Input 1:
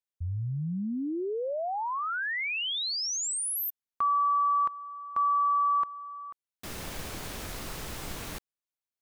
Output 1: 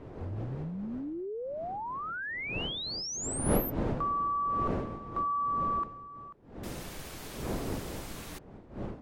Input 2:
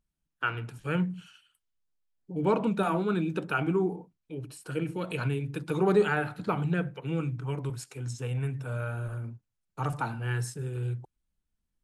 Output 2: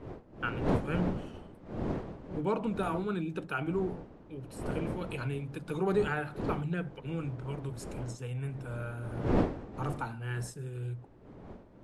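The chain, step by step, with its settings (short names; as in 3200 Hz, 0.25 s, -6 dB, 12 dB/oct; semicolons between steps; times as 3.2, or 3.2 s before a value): wind noise 390 Hz -33 dBFS; gain -5 dB; MP3 64 kbps 44100 Hz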